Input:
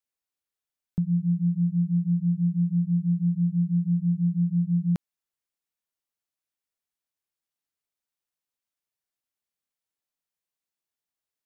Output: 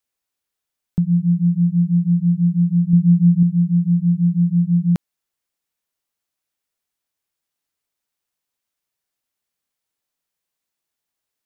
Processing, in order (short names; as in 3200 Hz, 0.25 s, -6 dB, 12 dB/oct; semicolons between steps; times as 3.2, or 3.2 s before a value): 2.93–3.43 low shelf 410 Hz +4.5 dB; gain +7.5 dB